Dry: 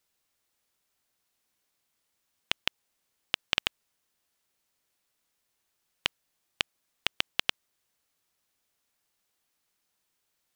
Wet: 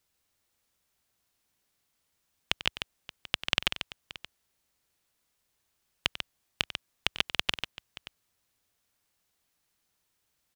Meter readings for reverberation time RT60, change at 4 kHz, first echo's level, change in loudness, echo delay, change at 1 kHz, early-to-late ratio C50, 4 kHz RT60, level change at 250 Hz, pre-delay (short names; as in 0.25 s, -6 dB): none, +1.0 dB, -14.5 dB, 0.0 dB, 94 ms, +1.0 dB, none, none, +3.0 dB, none